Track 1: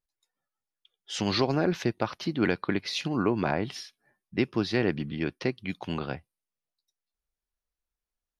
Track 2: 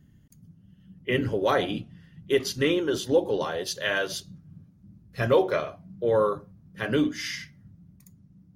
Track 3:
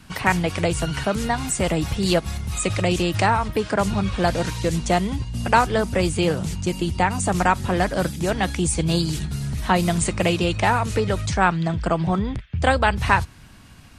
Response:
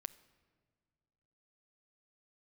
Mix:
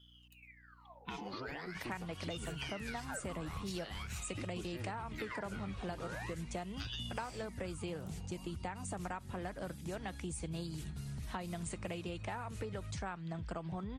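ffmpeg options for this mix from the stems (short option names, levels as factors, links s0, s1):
-filter_complex "[0:a]asplit=2[s0][s1];[s1]adelay=2.3,afreqshift=-2.4[s2];[s0][s2]amix=inputs=2:normalize=1,volume=0.447,asplit=3[s3][s4][s5];[s3]atrim=end=3,asetpts=PTS-STARTPTS,afade=t=out:st=2.996:d=0.004:c=hsin[s6];[s4]atrim=start=3:end=3.75,asetpts=PTS-STARTPTS,volume=0[s7];[s5]atrim=start=3.75,asetpts=PTS-STARTPTS,afade=t=in:d=0.004:c=hsin[s8];[s6][s7][s8]concat=n=3:v=0:a=1[s9];[1:a]aeval=exprs='val(0)*sin(2*PI*1900*n/s+1900*0.7/0.43*sin(2*PI*0.43*n/s))':c=same,volume=0.531[s10];[2:a]adynamicequalizer=threshold=0.00891:dfrequency=5100:dqfactor=0.95:tfrequency=5100:tqfactor=0.95:attack=5:release=100:ratio=0.375:range=2.5:mode=cutabove:tftype=bell,adelay=1650,volume=0.158[s11];[s9][s10]amix=inputs=2:normalize=0,aeval=exprs='val(0)+0.000708*(sin(2*PI*60*n/s)+sin(2*PI*2*60*n/s)/2+sin(2*PI*3*60*n/s)/3+sin(2*PI*4*60*n/s)/4+sin(2*PI*5*60*n/s)/5)':c=same,acompressor=threshold=0.00891:ratio=6,volume=1[s12];[s11][s12]amix=inputs=2:normalize=0,acompressor=threshold=0.0141:ratio=10"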